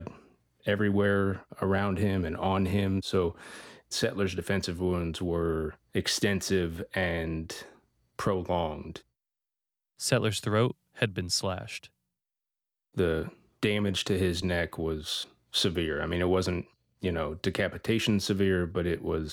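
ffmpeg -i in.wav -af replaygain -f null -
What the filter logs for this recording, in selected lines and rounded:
track_gain = +10.1 dB
track_peak = 0.218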